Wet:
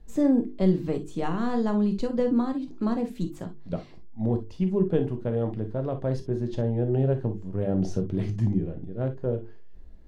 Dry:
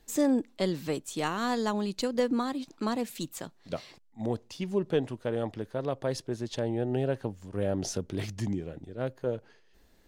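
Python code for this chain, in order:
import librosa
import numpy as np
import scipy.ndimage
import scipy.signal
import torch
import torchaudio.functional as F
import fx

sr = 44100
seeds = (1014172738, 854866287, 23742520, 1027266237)

y = fx.tilt_eq(x, sr, slope=-4.0)
y = fx.hum_notches(y, sr, base_hz=50, count=9)
y = fx.rev_gated(y, sr, seeds[0], gate_ms=80, shape='flat', drr_db=6.0)
y = F.gain(torch.from_numpy(y), -2.5).numpy()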